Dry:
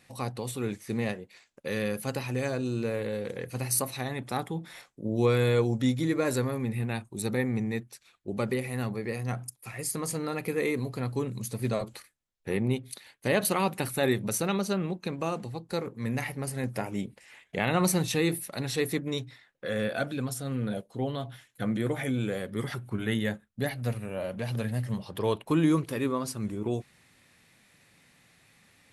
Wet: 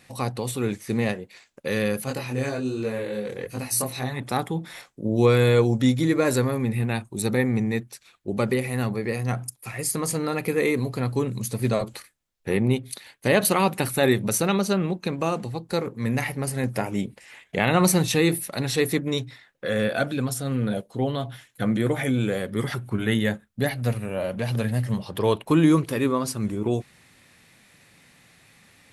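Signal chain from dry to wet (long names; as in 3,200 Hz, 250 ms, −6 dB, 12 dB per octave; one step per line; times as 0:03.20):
0:02.04–0:04.20: multi-voice chorus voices 2, 1.3 Hz, delay 22 ms, depth 3 ms
level +6 dB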